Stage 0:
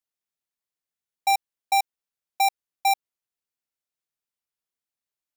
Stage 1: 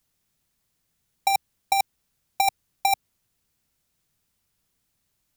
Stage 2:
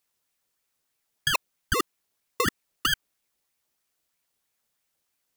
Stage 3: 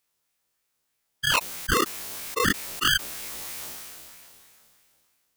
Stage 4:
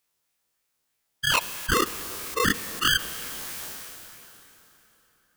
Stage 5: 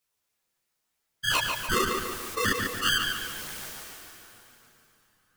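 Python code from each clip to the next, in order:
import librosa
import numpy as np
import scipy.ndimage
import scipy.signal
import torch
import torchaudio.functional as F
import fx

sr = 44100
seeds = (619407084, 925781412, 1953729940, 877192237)

y1 = fx.bass_treble(x, sr, bass_db=15, treble_db=2)
y1 = fx.over_compress(y1, sr, threshold_db=-24.0, ratio=-0.5)
y1 = y1 * 10.0 ** (6.5 / 20.0)
y2 = fx.low_shelf(y1, sr, hz=150.0, db=-10.0)
y2 = fx.ring_lfo(y2, sr, carrier_hz=1400.0, swing_pct=80, hz=3.1)
y3 = fx.spec_dilate(y2, sr, span_ms=60)
y3 = fx.sustainer(y3, sr, db_per_s=22.0)
y3 = y3 * 10.0 ** (-2.5 / 20.0)
y4 = fx.rev_plate(y3, sr, seeds[0], rt60_s=4.3, hf_ratio=0.75, predelay_ms=0, drr_db=14.0)
y5 = fx.chorus_voices(y4, sr, voices=2, hz=0.43, base_ms=11, depth_ms=3.0, mix_pct=55)
y5 = fx.echo_filtered(y5, sr, ms=145, feedback_pct=49, hz=4700.0, wet_db=-4.0)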